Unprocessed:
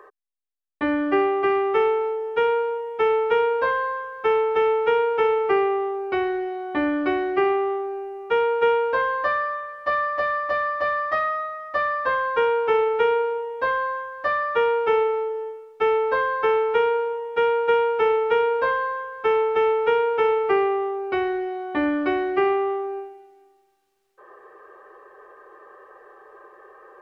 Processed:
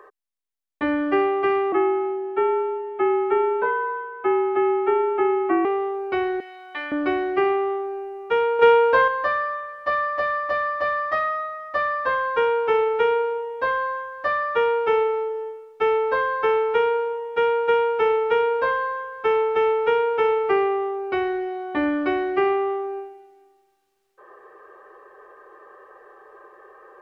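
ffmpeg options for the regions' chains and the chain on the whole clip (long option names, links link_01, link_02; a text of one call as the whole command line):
ffmpeg -i in.wav -filter_complex "[0:a]asettb=1/sr,asplit=3[link_01][link_02][link_03];[link_01]atrim=end=1.724[link_04];[link_02]atrim=start=1.72:end=5.65,asetpts=PTS-STARTPTS,afade=type=in:duration=0.004:curve=qsin,afade=type=out:start_time=3.926:duration=0.004:curve=qsin,acrossover=split=2500[link_05][link_06];[link_06]acompressor=threshold=-48dB:ratio=4:attack=1:release=60[link_07];[link_05][link_07]amix=inputs=2:normalize=0,acrossover=split=200 3100:gain=0.0891 1 0.0794[link_08][link_09][link_10];[link_08][link_09][link_10]amix=inputs=3:normalize=0,afreqshift=-57[link_11];[link_03]atrim=start=5.646[link_12];[link_04][link_11]acrossfade=duration=0.004:curve1=hsin:curve2=qsin[link_13];[link_13][link_12]acrossfade=duration=0.004:curve1=qsin:curve2=hsin,asettb=1/sr,asplit=3[link_14][link_15][link_16];[link_14]atrim=end=6.404[link_17];[link_15]atrim=start=6.4:end=6.92,asetpts=PTS-STARTPTS,afade=type=in:duration=0.004:curve=qsin,afade=type=out:start_time=0.516:duration=0.004:curve=qsin,bandpass=frequency=2700:width_type=q:width=0.73,aemphasis=mode=production:type=bsi[link_18];[link_16]atrim=start=6.916[link_19];[link_17][link_18]acrossfade=duration=0.004:curve1=hsin:curve2=qsin[link_20];[link_20][link_19]acrossfade=duration=0.004:curve1=qsin:curve2=hsin,asettb=1/sr,asplit=3[link_21][link_22][link_23];[link_21]atrim=end=8.594[link_24];[link_22]atrim=start=8.59:end=9.08,asetpts=PTS-STARTPTS,afade=type=in:duration=0.004:curve=qsin,afade=type=out:start_time=0.486:duration=0.004:curve=qsin,highpass=45,acontrast=38[link_25];[link_23]atrim=start=9.076[link_26];[link_24][link_25]acrossfade=duration=0.004:curve1=hsin:curve2=qsin[link_27];[link_27][link_26]acrossfade=duration=0.004:curve1=qsin:curve2=hsin" out.wav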